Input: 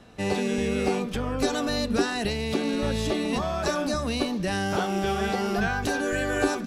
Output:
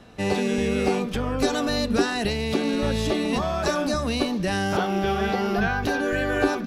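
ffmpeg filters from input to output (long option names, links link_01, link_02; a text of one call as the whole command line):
ffmpeg -i in.wav -af "asetnsamples=nb_out_samples=441:pad=0,asendcmd='4.77 equalizer g -14.5',equalizer=frequency=8200:width_type=o:width=0.72:gain=-2.5,volume=2.5dB" out.wav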